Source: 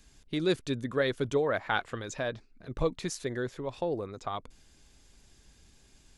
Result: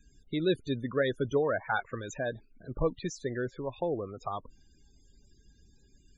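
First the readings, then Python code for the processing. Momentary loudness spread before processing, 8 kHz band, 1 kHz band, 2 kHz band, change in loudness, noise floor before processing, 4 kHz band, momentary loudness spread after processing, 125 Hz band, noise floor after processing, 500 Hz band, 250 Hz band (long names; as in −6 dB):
10 LU, −4.0 dB, −0.5 dB, −1.0 dB, −0.5 dB, −61 dBFS, −4.0 dB, 10 LU, 0.0 dB, −63 dBFS, 0.0 dB, 0.0 dB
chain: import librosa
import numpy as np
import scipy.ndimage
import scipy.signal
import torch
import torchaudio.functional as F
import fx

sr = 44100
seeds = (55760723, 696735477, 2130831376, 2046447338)

y = fx.quant_companded(x, sr, bits=8)
y = fx.spec_topn(y, sr, count=32)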